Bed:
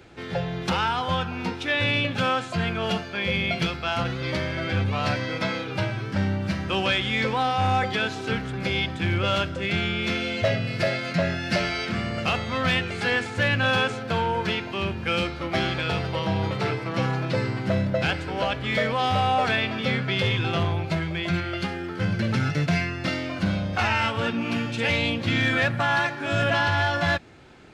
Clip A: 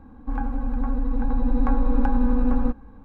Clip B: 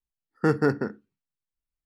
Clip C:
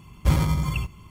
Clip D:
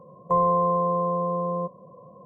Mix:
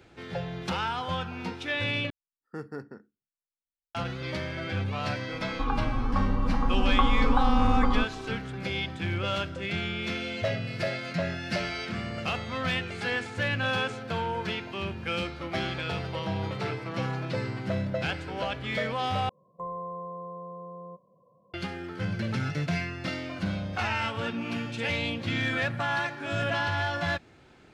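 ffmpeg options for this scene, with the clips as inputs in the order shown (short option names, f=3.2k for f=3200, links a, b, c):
-filter_complex "[0:a]volume=-6dB[a];[1:a]lowpass=f=1.2k:t=q:w=7.3[b];[a]asplit=3[c][d][e];[c]atrim=end=2.104[f];[2:a]atrim=end=1.85,asetpts=PTS-STARTPTS,volume=-16.5dB[g];[d]atrim=start=3.946:end=19.294[h];[4:a]atrim=end=2.25,asetpts=PTS-STARTPTS,volume=-15.5dB[i];[e]atrim=start=21.536[j];[b]atrim=end=3.04,asetpts=PTS-STARTPTS,volume=-4dB,afade=t=in:d=0.004:c=hsin,afade=t=out:st=3.036:d=0.004:c=hsin,adelay=5320[k];[f][g]acrossfade=d=0.004:c1=hsin:c2=hsin[l];[l][h]acrossfade=d=0.004:c1=hsin:c2=hsin[m];[m][i]acrossfade=d=0.004:c1=hsin:c2=hsin[n];[n][j]acrossfade=d=0.004:c1=hsin:c2=hsin[o];[o][k]amix=inputs=2:normalize=0"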